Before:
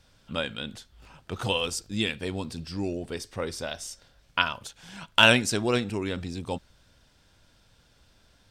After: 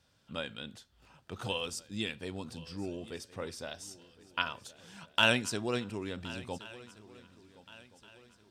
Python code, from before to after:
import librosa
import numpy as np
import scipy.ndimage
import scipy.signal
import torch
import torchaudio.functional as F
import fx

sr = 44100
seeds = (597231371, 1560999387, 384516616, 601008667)

p1 = scipy.signal.sosfilt(scipy.signal.butter(2, 72.0, 'highpass', fs=sr, output='sos'), x)
p2 = fx.notch(p1, sr, hz=2200.0, q=28.0)
p3 = p2 + fx.echo_swing(p2, sr, ms=1425, ratio=3, feedback_pct=35, wet_db=-19, dry=0)
y = p3 * librosa.db_to_amplitude(-8.0)